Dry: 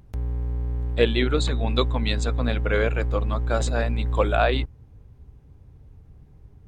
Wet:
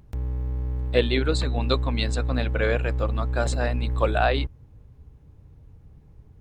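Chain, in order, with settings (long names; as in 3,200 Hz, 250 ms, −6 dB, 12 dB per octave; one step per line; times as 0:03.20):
wrong playback speed 24 fps film run at 25 fps
level −1 dB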